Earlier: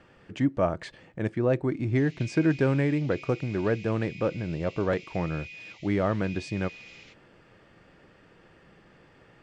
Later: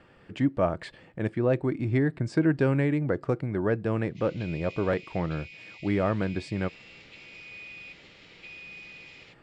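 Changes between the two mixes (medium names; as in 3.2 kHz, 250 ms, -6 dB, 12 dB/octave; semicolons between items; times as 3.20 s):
background: entry +2.20 s; master: add peaking EQ 6.2 kHz -8.5 dB 0.28 oct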